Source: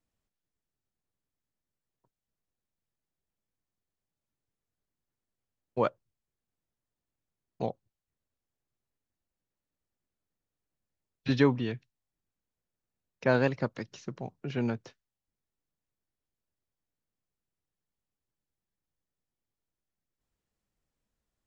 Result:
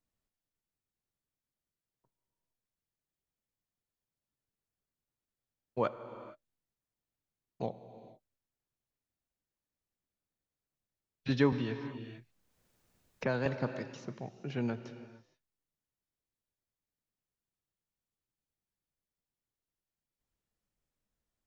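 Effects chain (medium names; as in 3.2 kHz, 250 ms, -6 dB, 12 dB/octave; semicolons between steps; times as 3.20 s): gated-style reverb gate 490 ms flat, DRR 11 dB; 11.52–13.46 s: three bands compressed up and down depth 70%; trim -4 dB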